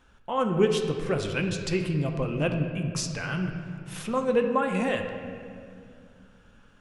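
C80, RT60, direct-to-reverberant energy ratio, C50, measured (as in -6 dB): 7.0 dB, 2.4 s, 3.5 dB, 6.0 dB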